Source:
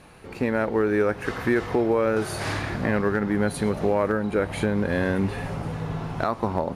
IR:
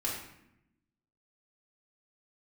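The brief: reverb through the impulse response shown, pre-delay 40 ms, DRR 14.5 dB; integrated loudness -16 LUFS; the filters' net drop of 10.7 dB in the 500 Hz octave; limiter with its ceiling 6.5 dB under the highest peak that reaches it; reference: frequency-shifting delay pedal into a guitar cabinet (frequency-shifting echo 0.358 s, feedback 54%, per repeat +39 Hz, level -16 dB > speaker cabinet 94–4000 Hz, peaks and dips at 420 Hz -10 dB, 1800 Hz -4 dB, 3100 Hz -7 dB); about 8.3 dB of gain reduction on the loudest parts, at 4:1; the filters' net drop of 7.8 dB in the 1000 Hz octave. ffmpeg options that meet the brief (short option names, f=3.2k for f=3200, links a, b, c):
-filter_complex "[0:a]equalizer=f=500:t=o:g=-5.5,equalizer=f=1k:t=o:g=-8,acompressor=threshold=-31dB:ratio=4,alimiter=level_in=3dB:limit=-24dB:level=0:latency=1,volume=-3dB,asplit=2[a][b];[1:a]atrim=start_sample=2205,adelay=40[c];[b][c]afir=irnorm=-1:irlink=0,volume=-19.5dB[d];[a][d]amix=inputs=2:normalize=0,asplit=6[e][f][g][h][i][j];[f]adelay=358,afreqshift=39,volume=-16dB[k];[g]adelay=716,afreqshift=78,volume=-21.4dB[l];[h]adelay=1074,afreqshift=117,volume=-26.7dB[m];[i]adelay=1432,afreqshift=156,volume=-32.1dB[n];[j]adelay=1790,afreqshift=195,volume=-37.4dB[o];[e][k][l][m][n][o]amix=inputs=6:normalize=0,highpass=94,equalizer=f=420:t=q:w=4:g=-10,equalizer=f=1.8k:t=q:w=4:g=-4,equalizer=f=3.1k:t=q:w=4:g=-7,lowpass=f=4k:w=0.5412,lowpass=f=4k:w=1.3066,volume=22.5dB"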